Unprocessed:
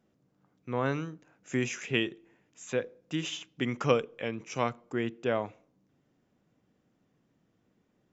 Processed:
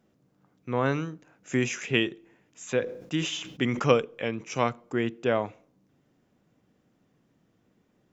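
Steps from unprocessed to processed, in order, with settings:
0:02.80–0:03.88: level that may fall only so fast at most 76 dB per second
level +4 dB

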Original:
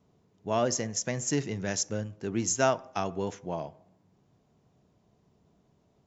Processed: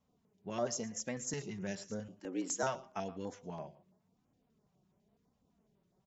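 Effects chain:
flanger 0.93 Hz, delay 3.6 ms, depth 2 ms, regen +22%
0:02.08–0:02.63: frequency shifter +80 Hz
on a send: single-tap delay 115 ms −19 dB
on the sum: notch on a step sequencer 12 Hz 330–6,300 Hz
level −4 dB

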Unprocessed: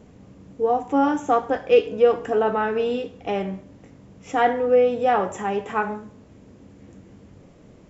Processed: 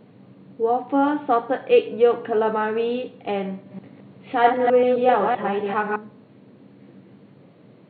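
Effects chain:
0:03.53–0:05.96: delay that plays each chunk backwards 130 ms, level −2 dB
brick-wall band-pass 100–4,500 Hz

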